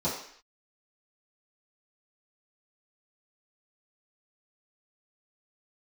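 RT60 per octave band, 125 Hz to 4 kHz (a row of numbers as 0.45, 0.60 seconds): 0.40 s, 0.55 s, 0.55 s, 0.60 s, 0.70 s, can't be measured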